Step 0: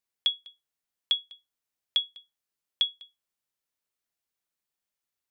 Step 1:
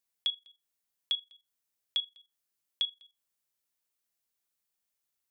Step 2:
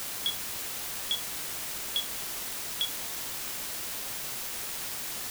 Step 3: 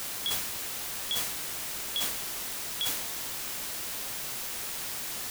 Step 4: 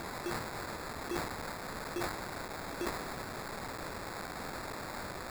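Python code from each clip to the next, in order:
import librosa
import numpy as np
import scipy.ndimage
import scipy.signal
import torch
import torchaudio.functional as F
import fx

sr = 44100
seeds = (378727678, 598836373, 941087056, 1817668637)

y1 = fx.high_shelf(x, sr, hz=5700.0, db=7.0)
y1 = fx.level_steps(y1, sr, step_db=14)
y2 = fx.quant_dither(y1, sr, seeds[0], bits=6, dither='triangular')
y3 = fx.transient(y2, sr, attack_db=-3, sustain_db=10)
y4 = fx.sample_hold(y3, sr, seeds[1], rate_hz=3000.0, jitter_pct=0)
y4 = F.gain(torch.from_numpy(y4), -5.5).numpy()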